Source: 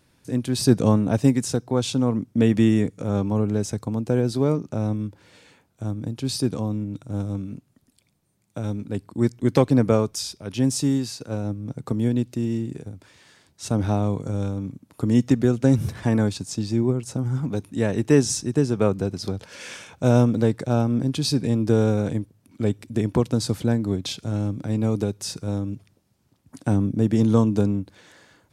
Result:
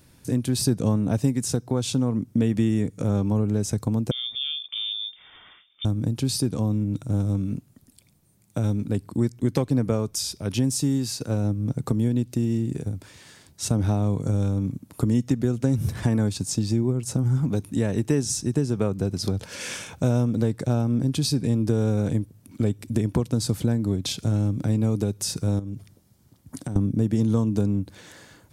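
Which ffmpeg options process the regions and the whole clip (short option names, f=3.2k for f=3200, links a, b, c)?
-filter_complex "[0:a]asettb=1/sr,asplit=3[a][b][c];[a]atrim=end=4.114[d];[b]atrim=start=4.11:end=5.85,asetpts=PTS-STARTPTS,afade=t=in:d=0.004:c=qsin,afade=t=out:st=1.736:d=0.004:c=qsin,acompressor=threshold=-46dB:ratio=1.5:attack=3.2:release=140:knee=1:detection=peak,lowpass=f=3.1k:t=q:w=0.5098,lowpass=f=3.1k:t=q:w=0.6013,lowpass=f=3.1k:t=q:w=0.9,lowpass=f=3.1k:t=q:w=2.563,afreqshift=-3700[e];[c]atrim=start=5.846[f];[d][e]acrossfade=d=0.004:c1=hsin:c2=qsin[g];[g][f]acrossfade=d=0.004:c1=qsin:c2=hsin,asettb=1/sr,asplit=3[h][i][j];[h]atrim=end=25.594[k];[i]atrim=start=25.59:end=26.76,asetpts=PTS-STARTPTS,afade=t=in:d=0.004:c=qsin,afade=t=out:st=1.166:d=0.004:c=qsin,bandreject=f=2.6k:w=13,acompressor=threshold=-34dB:ratio=12:attack=3.2:release=140:knee=1:detection=peak[l];[j]atrim=start=26.756[m];[k][l]acrossfade=d=0.004:c1=hsin:c2=qsin[n];[n][m]acrossfade=d=0.004:c1=qsin:c2=hsin,highshelf=f=7.3k:g=10,acompressor=threshold=-28dB:ratio=3,lowshelf=f=250:g=7,volume=2.5dB"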